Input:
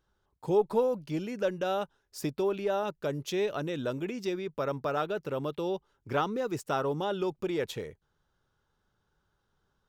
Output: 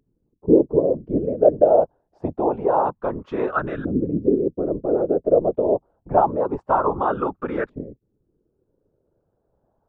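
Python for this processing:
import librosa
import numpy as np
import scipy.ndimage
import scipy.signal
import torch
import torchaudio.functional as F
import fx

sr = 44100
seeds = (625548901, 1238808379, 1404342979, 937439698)

y = fx.filter_lfo_lowpass(x, sr, shape='saw_up', hz=0.26, low_hz=260.0, high_hz=1500.0, q=4.8)
y = fx.whisperise(y, sr, seeds[0])
y = F.gain(torch.from_numpy(y), 5.0).numpy()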